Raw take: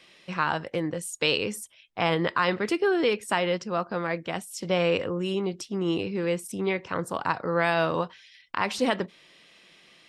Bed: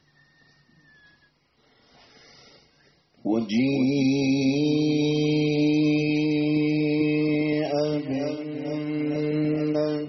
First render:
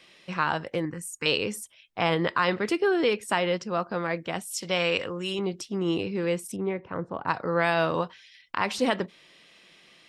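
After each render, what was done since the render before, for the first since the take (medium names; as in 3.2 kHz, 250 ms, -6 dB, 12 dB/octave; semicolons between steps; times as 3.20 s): 0.85–1.26 s: static phaser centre 1.5 kHz, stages 4; 4.45–5.39 s: tilt shelf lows -5.5 dB, about 1.1 kHz; 6.56–7.28 s: tape spacing loss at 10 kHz 45 dB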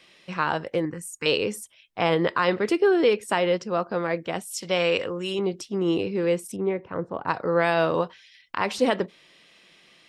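dynamic bell 450 Hz, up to +5 dB, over -37 dBFS, Q 1.1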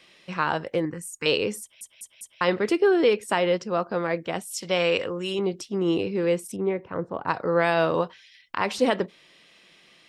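1.61 s: stutter in place 0.20 s, 4 plays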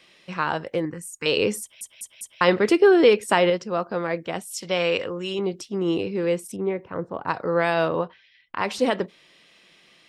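1.37–3.50 s: gain +4.5 dB; 4.66–5.44 s: low-pass 7.8 kHz 24 dB/octave; 7.88–8.58 s: distance through air 260 m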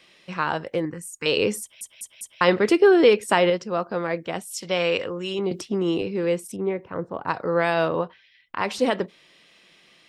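5.51–6.02 s: three bands compressed up and down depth 70%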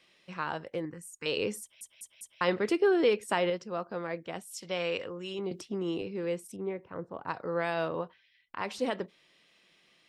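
trim -9.5 dB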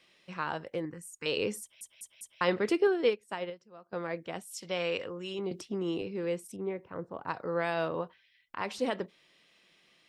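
2.87–3.93 s: upward expansion 2.5:1, over -33 dBFS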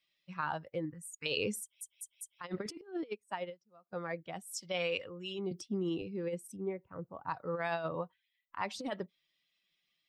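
expander on every frequency bin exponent 1.5; compressor with a negative ratio -35 dBFS, ratio -0.5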